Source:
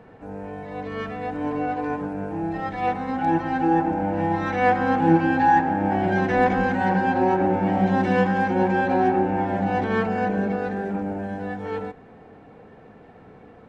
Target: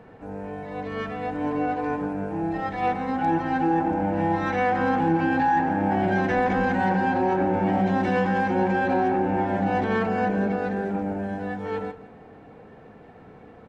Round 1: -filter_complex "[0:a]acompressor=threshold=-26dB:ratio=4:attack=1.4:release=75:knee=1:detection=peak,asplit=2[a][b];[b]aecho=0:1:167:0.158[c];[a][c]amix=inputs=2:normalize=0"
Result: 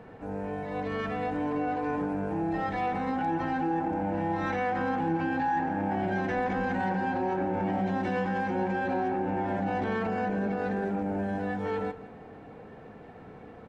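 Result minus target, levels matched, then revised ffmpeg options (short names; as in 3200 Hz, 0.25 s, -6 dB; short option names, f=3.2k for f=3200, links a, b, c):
compressor: peak gain reduction +7 dB
-filter_complex "[0:a]acompressor=threshold=-17dB:ratio=4:attack=1.4:release=75:knee=1:detection=peak,asplit=2[a][b];[b]aecho=0:1:167:0.158[c];[a][c]amix=inputs=2:normalize=0"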